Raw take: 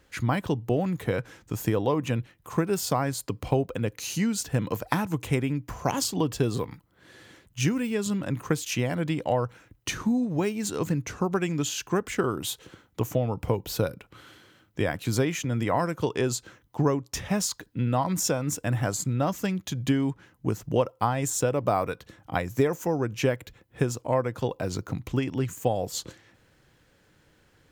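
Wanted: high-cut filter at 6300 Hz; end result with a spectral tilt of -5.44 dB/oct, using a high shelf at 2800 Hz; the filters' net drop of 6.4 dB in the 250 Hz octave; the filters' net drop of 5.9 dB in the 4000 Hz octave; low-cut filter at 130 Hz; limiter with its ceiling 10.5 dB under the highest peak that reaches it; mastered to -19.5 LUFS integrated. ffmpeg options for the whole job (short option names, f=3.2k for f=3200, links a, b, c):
-af "highpass=130,lowpass=6.3k,equalizer=f=250:t=o:g=-8,highshelf=f=2.8k:g=-3.5,equalizer=f=4k:t=o:g=-4,volume=14dB,alimiter=limit=-4.5dB:level=0:latency=1"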